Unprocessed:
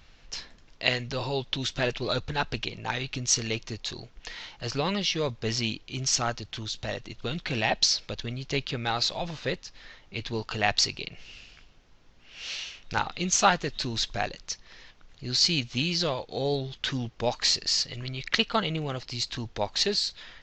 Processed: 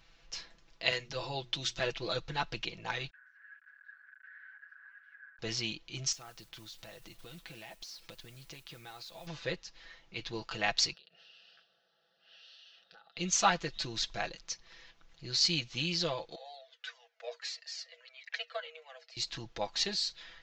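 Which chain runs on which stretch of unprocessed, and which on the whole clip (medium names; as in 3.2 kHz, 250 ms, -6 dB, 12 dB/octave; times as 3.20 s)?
0.91–1.80 s: treble shelf 6.9 kHz +7 dB + hum notches 60/120/180/240/300/360 Hz + three bands expanded up and down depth 40%
3.10–5.39 s: one-bit comparator + Butterworth band-pass 1.6 kHz, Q 7.8
6.12–9.27 s: modulation noise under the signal 14 dB + compression 8:1, threshold -39 dBFS
10.93–13.17 s: high-pass 210 Hz 24 dB/octave + compression 12:1, threshold -46 dBFS + static phaser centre 1.5 kHz, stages 8
16.35–19.17 s: rippled Chebyshev high-pass 460 Hz, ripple 9 dB + Shepard-style flanger falling 1.6 Hz
whole clip: bass shelf 360 Hz -5 dB; comb 6 ms; trim -6.5 dB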